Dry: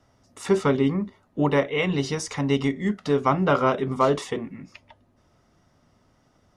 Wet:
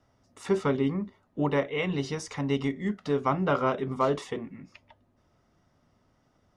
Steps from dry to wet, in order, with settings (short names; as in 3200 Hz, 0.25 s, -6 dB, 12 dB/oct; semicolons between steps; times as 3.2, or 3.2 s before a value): high shelf 6000 Hz -5.5 dB; gain -5 dB